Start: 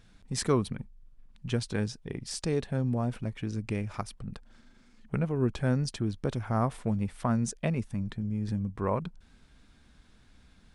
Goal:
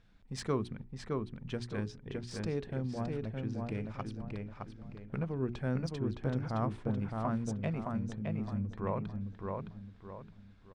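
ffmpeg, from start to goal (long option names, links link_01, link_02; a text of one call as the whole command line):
ffmpeg -i in.wav -filter_complex "[0:a]adynamicsmooth=sensitivity=2:basefreq=5000,bandreject=frequency=60:width_type=h:width=6,bandreject=frequency=120:width_type=h:width=6,bandreject=frequency=180:width_type=h:width=6,bandreject=frequency=240:width_type=h:width=6,bandreject=frequency=300:width_type=h:width=6,bandreject=frequency=360:width_type=h:width=6,bandreject=frequency=420:width_type=h:width=6,asplit=2[link_01][link_02];[link_02]adelay=615,lowpass=frequency=3200:poles=1,volume=-3dB,asplit=2[link_03][link_04];[link_04]adelay=615,lowpass=frequency=3200:poles=1,volume=0.37,asplit=2[link_05][link_06];[link_06]adelay=615,lowpass=frequency=3200:poles=1,volume=0.37,asplit=2[link_07][link_08];[link_08]adelay=615,lowpass=frequency=3200:poles=1,volume=0.37,asplit=2[link_09][link_10];[link_10]adelay=615,lowpass=frequency=3200:poles=1,volume=0.37[link_11];[link_01][link_03][link_05][link_07][link_09][link_11]amix=inputs=6:normalize=0,volume=-6dB" out.wav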